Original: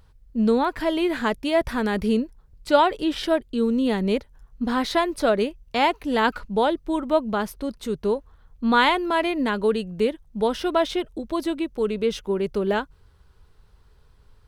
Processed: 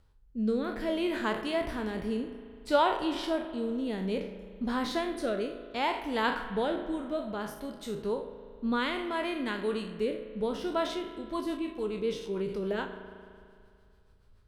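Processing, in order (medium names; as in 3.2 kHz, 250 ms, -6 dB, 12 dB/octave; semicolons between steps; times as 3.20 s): spectral sustain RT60 0.43 s; rotary cabinet horn 0.6 Hz, later 7 Hz, at 10.59 s; spring tank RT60 2.3 s, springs 37 ms, chirp 65 ms, DRR 9.5 dB; trim -8 dB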